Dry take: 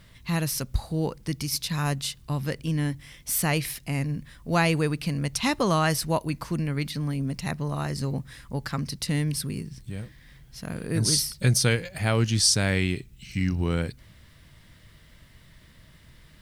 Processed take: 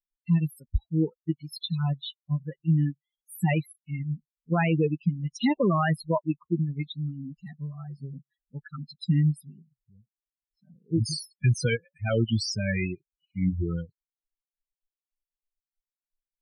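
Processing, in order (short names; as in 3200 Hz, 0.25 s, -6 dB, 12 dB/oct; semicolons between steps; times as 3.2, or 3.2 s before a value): per-bin expansion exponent 3; dynamic EQ 300 Hz, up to +4 dB, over -42 dBFS, Q 0.84; limiter -22 dBFS, peak gain reduction 10.5 dB; loudest bins only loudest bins 16; air absorption 63 m; gain +7.5 dB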